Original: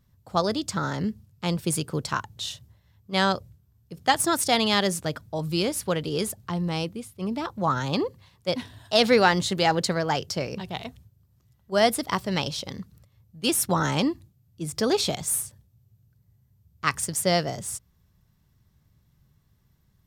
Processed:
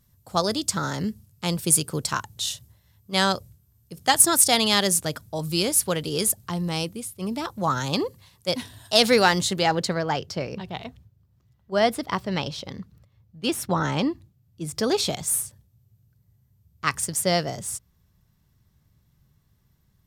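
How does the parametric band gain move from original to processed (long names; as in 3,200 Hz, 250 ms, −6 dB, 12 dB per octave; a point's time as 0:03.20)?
parametric band 11,000 Hz 1.7 octaves
0:09.32 +12 dB
0:09.63 +1 dB
0:10.26 −8.5 dB
0:13.96 −8.5 dB
0:14.86 +2 dB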